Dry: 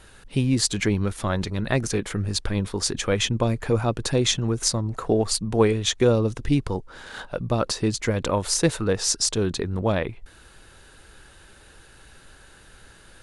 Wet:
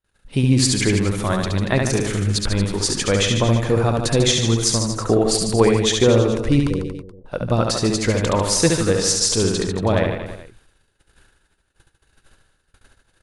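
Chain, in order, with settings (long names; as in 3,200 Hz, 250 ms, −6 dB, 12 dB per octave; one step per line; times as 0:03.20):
0:06.69–0:07.26: Butterworth low-pass 530 Hz 48 dB per octave
noise gate −45 dBFS, range −41 dB
reverse bouncing-ball delay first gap 70 ms, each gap 1.1×, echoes 5
level +3 dB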